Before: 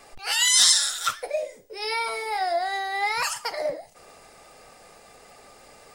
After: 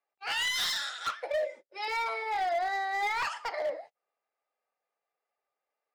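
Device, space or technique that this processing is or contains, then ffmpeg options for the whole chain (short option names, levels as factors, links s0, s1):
walkie-talkie: -filter_complex "[0:a]asettb=1/sr,asplit=3[s0][s1][s2];[s0]atrim=end=1.254[s3];[s1]atrim=start=1.25:end=1.88,asetpts=PTS-STARTPTS,afade=t=in:d=0.004:c=qsin,afade=t=out:st=0.626:d=0.004:c=qsin,aecho=1:1:3.4:0.88,atrim=end_sample=27783[s4];[s2]atrim=start=1.876[s5];[s3][s4]acrossfade=d=0.004:c1=hsin:c2=qsin[s6];[s6][s5]acrossfade=d=0.004:c1=qsin:c2=hsin,highpass=520,lowpass=2700,asoftclip=type=hard:threshold=0.0562,agate=range=0.02:threshold=0.00562:ratio=16:detection=peak,volume=0.841"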